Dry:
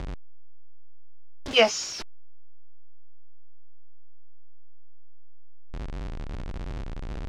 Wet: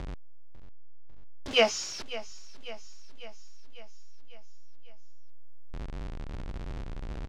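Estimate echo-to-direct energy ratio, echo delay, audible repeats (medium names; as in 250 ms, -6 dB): -14.0 dB, 548 ms, 5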